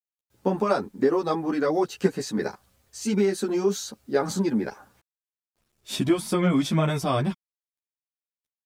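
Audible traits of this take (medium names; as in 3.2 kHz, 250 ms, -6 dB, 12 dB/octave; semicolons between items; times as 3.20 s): a quantiser's noise floor 12-bit, dither none; a shimmering, thickened sound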